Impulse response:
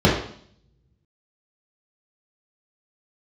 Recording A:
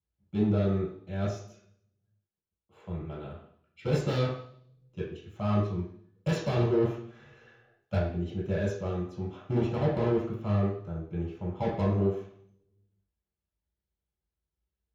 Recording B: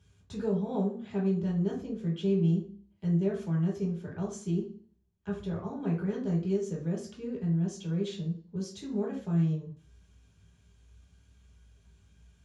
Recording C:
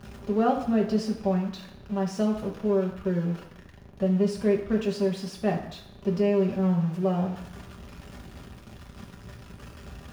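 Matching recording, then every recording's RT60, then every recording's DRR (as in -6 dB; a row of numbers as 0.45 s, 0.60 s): A; 0.60 s, 0.45 s, 0.75 s; -6.5 dB, -4.5 dB, -1.0 dB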